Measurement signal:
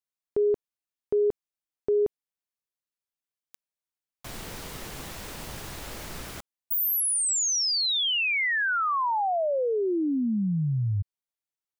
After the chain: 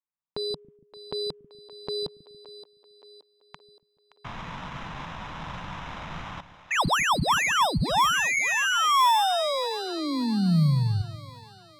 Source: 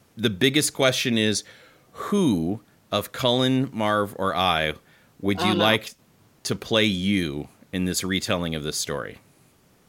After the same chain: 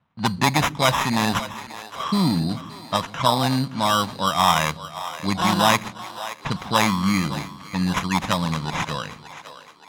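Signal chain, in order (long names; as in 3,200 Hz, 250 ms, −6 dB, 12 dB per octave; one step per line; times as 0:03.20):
decimation without filtering 10×
noise gate −53 dBFS, range −13 dB
graphic EQ with 15 bands 160 Hz +8 dB, 400 Hz −10 dB, 1,000 Hz +9 dB, 4,000 Hz +9 dB
low-pass that shuts in the quiet parts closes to 2,800 Hz, open at −16 dBFS
on a send: echo with a time of its own for lows and highs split 350 Hz, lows 141 ms, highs 572 ms, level −14 dB
on the sum: level −1 dB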